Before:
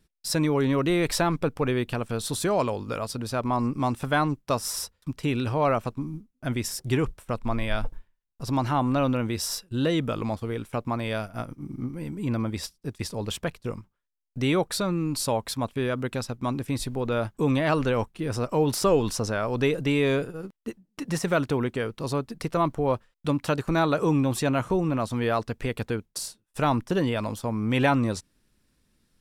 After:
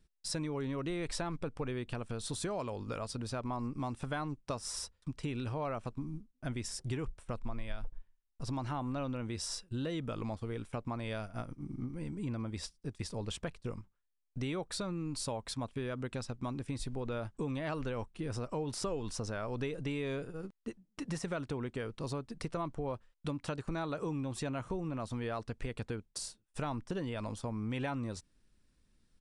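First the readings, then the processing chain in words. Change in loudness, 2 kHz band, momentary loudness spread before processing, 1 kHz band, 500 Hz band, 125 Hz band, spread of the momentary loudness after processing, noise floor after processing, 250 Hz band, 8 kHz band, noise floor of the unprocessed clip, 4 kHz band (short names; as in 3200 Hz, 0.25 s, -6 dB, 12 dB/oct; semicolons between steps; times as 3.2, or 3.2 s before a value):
-12.0 dB, -13.0 dB, 11 LU, -13.5 dB, -13.0 dB, -10.5 dB, 6 LU, -76 dBFS, -12.0 dB, -9.5 dB, -75 dBFS, -10.5 dB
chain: low shelf 62 Hz +9 dB; compressor 4:1, threshold -28 dBFS, peak gain reduction 13 dB; downsampling 22050 Hz; gain -6.5 dB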